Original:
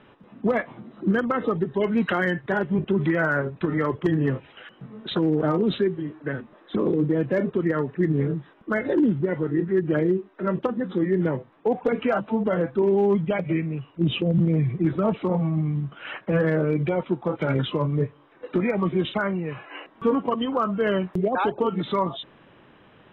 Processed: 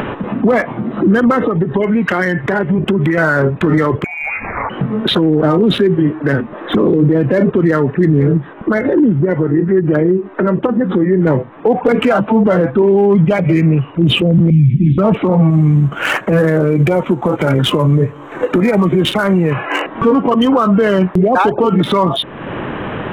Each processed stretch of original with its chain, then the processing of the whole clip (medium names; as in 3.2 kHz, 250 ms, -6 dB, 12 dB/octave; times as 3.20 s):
1.43–3.18 s: dynamic bell 2.1 kHz, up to +5 dB, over -45 dBFS, Q 3.9 + compression 5:1, threshold -31 dBFS
4.04–4.70 s: bass shelf 360 Hz -7.5 dB + compression 10:1, threshold -40 dBFS + frequency inversion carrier 2.6 kHz
8.37–11.27 s: treble shelf 3.3 kHz -5 dB + compression 2:1, threshold -35 dBFS
14.50–14.98 s: elliptic band-stop 250–2700 Hz + doubling 14 ms -6 dB
15.50–19.52 s: CVSD coder 64 kbps + compression 3:1, threshold -27 dBFS
whole clip: local Wiener filter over 9 samples; upward compressor, threshold -29 dBFS; loudness maximiser +22.5 dB; trim -3.5 dB